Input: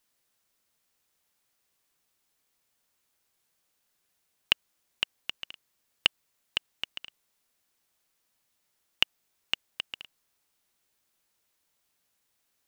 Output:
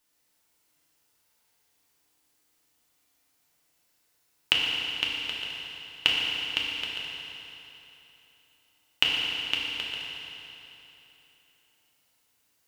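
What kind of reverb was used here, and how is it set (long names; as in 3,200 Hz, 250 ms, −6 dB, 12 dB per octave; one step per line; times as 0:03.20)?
feedback delay network reverb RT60 3.3 s, high-frequency decay 0.9×, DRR −4 dB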